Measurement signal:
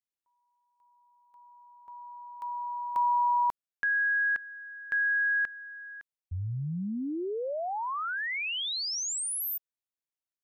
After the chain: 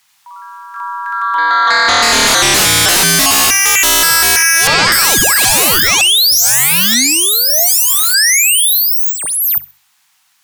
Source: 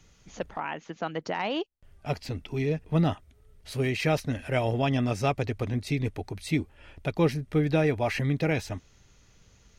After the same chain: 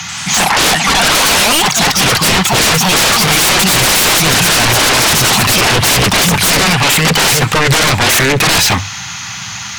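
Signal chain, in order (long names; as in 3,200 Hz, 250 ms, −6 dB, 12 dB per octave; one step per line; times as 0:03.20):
mid-hump overdrive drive 19 dB, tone 2,200 Hz, clips at −13 dBFS
high-pass filter 90 Hz 24 dB per octave
high-shelf EQ 3,900 Hz +8.5 dB
delay with pitch and tempo change per echo 88 ms, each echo +3 semitones, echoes 3
drawn EQ curve 170 Hz 0 dB, 510 Hz −30 dB, 770 Hz −2 dB
in parallel at −1 dB: downward compressor 6 to 1, threshold −34 dBFS
on the sum: sine wavefolder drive 17 dB, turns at −11.5 dBFS
mains-hum notches 50/100/150 Hz
on a send: feedback echo with a high-pass in the loop 65 ms, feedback 26%, level −19 dB
on the sum: level +4.5 dB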